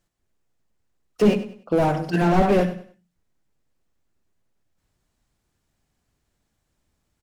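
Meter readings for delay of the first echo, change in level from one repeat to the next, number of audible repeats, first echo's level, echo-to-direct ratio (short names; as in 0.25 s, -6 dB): 98 ms, -10.0 dB, 3, -13.5 dB, -13.0 dB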